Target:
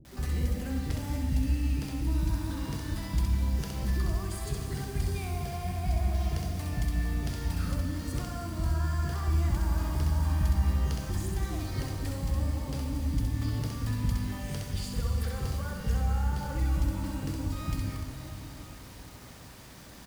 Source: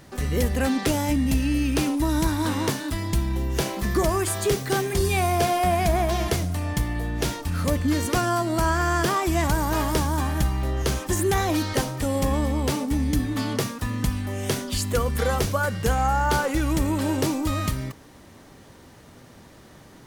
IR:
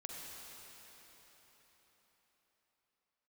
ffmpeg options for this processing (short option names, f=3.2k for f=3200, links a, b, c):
-filter_complex "[0:a]equalizer=f=4.8k:w=7.3:g=6.5,acrossover=split=180[a][b];[b]acompressor=threshold=-35dB:ratio=16[c];[a][c]amix=inputs=2:normalize=0,aeval=exprs='val(0)+0.00224*(sin(2*PI*60*n/s)+sin(2*PI*2*60*n/s)/2+sin(2*PI*3*60*n/s)/3+sin(2*PI*4*60*n/s)/4+sin(2*PI*5*60*n/s)/5)':c=same,acrusher=bits=7:mix=0:aa=0.000001,acrossover=split=410[d][e];[e]adelay=50[f];[d][f]amix=inputs=2:normalize=0,asplit=2[g][h];[1:a]atrim=start_sample=2205,adelay=65[i];[h][i]afir=irnorm=-1:irlink=0,volume=2dB[j];[g][j]amix=inputs=2:normalize=0,volume=-5dB"